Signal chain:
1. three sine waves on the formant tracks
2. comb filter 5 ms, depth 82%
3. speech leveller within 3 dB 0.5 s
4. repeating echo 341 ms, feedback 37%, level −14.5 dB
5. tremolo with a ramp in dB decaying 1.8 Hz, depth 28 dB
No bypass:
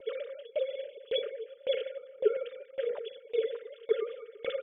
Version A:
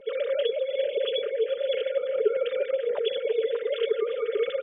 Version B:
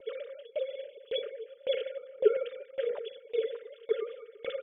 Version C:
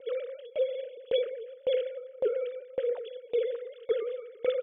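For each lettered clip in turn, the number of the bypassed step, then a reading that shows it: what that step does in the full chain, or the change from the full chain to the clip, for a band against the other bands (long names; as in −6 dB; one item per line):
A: 5, change in momentary loudness spread −7 LU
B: 3, change in momentary loudness spread +4 LU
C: 2, change in crest factor −3.0 dB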